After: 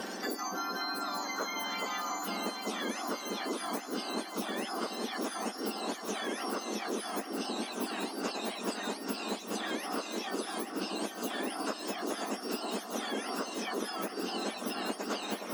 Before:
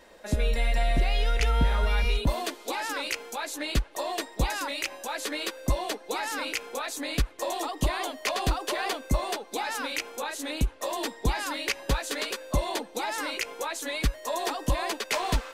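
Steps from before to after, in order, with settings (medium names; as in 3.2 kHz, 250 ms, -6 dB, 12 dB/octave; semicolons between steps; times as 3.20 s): spectrum inverted on a logarithmic axis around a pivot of 1.7 kHz; echo whose repeats swap between lows and highs 417 ms, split 1.3 kHz, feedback 83%, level -5 dB; three bands compressed up and down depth 100%; trim -6 dB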